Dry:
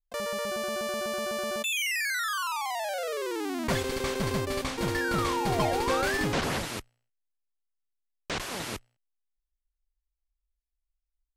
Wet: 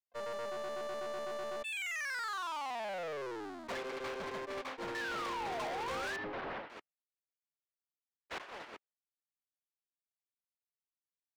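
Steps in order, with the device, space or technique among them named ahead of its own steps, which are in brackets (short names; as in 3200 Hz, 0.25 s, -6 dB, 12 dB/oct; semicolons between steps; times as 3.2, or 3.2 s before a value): walkie-talkie (BPF 450–2300 Hz; hard clip -35.5 dBFS, distortion -6 dB; gate -39 dBFS, range -27 dB); 6.16–6.7 air absorption 330 m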